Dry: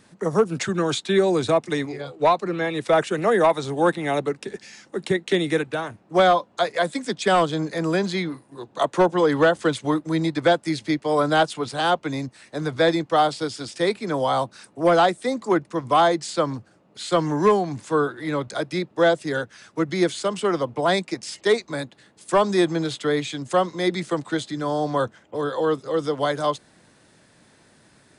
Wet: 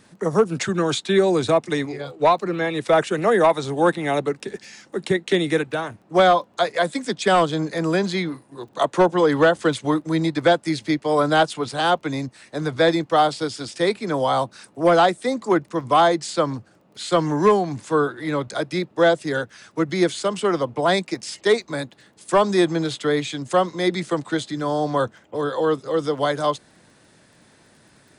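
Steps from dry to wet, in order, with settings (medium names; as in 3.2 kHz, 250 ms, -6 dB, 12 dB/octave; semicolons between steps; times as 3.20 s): crackle 14 per s -47 dBFS; trim +1.5 dB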